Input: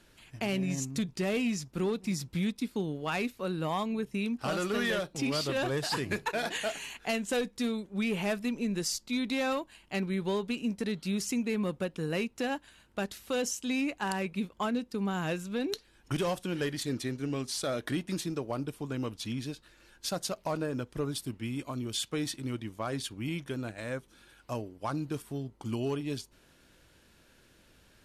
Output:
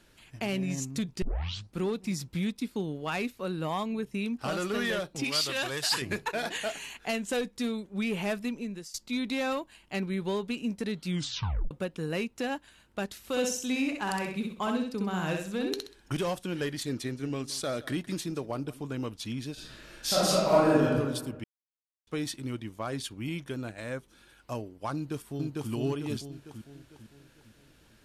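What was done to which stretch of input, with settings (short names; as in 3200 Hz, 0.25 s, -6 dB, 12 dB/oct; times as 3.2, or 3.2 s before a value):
1.22 tape start 0.55 s
5.24–6.02 tilt shelf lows -7.5 dB, about 1100 Hz
8.43–8.94 fade out, to -20 dB
11.06 tape stop 0.65 s
13.18–16.15 feedback echo 64 ms, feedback 32%, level -4 dB
16.86–19.02 echo 0.169 s -18.5 dB
19.53–20.94 reverb throw, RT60 1.3 s, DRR -10 dB
21.44–22.07 mute
24.94–25.71 echo throw 0.45 s, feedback 45%, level -0.5 dB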